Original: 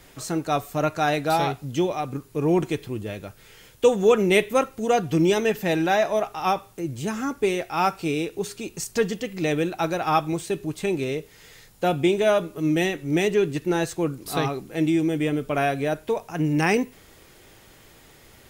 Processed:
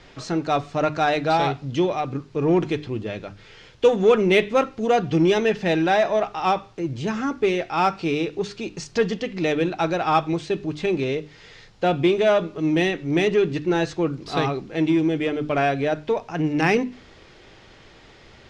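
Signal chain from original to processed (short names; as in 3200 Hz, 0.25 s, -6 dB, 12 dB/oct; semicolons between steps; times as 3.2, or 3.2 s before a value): LPF 5300 Hz 24 dB/oct; notches 50/100/150/200/250/300 Hz; in parallel at -6 dB: soft clip -23.5 dBFS, distortion -8 dB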